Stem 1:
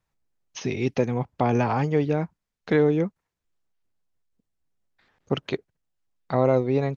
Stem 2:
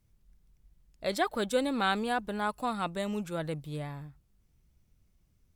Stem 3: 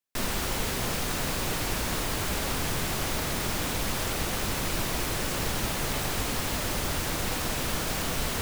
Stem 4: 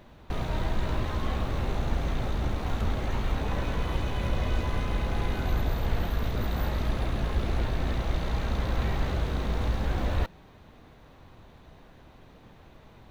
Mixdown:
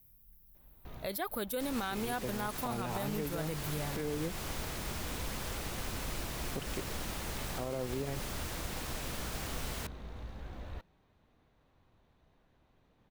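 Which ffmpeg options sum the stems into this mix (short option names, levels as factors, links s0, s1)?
-filter_complex "[0:a]tremolo=f=0.59:d=0.4,adelay=1250,volume=0.316[s0];[1:a]aexciter=amount=15.8:drive=4.8:freq=11000,volume=0.944,asplit=2[s1][s2];[2:a]adelay=1450,volume=0.299[s3];[3:a]adelay=550,volume=0.141[s4];[s2]apad=whole_len=602160[s5];[s4][s5]sidechaincompress=threshold=0.0141:ratio=4:attack=16:release=356[s6];[s0][s1][s3][s6]amix=inputs=4:normalize=0,alimiter=level_in=1.26:limit=0.0631:level=0:latency=1:release=126,volume=0.794"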